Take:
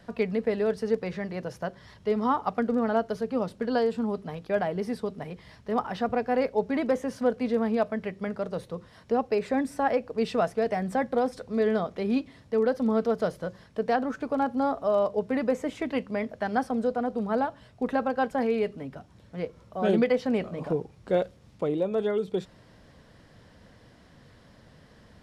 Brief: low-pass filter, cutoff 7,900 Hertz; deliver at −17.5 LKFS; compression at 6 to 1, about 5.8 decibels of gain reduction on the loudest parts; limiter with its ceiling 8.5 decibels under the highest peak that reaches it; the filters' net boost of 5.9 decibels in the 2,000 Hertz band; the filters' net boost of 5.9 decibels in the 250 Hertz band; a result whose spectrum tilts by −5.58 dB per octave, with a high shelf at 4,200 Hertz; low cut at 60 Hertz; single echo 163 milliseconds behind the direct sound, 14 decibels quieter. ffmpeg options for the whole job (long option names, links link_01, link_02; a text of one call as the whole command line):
ffmpeg -i in.wav -af "highpass=60,lowpass=7900,equalizer=frequency=250:width_type=o:gain=6.5,equalizer=frequency=2000:width_type=o:gain=6,highshelf=frequency=4200:gain=7,acompressor=threshold=-22dB:ratio=6,alimiter=limit=-21.5dB:level=0:latency=1,aecho=1:1:163:0.2,volume=14dB" out.wav